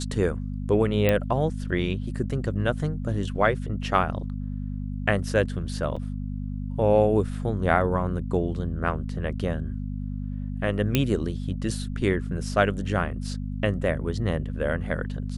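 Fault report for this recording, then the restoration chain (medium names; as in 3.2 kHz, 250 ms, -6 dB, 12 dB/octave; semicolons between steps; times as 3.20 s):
hum 50 Hz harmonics 5 -31 dBFS
1.09 s: pop -9 dBFS
5.96–5.97 s: dropout 5.5 ms
10.95 s: pop -6 dBFS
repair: de-click; de-hum 50 Hz, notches 5; interpolate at 5.96 s, 5.5 ms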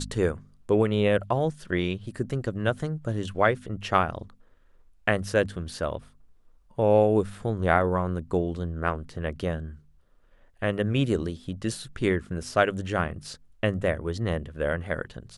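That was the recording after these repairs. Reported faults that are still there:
nothing left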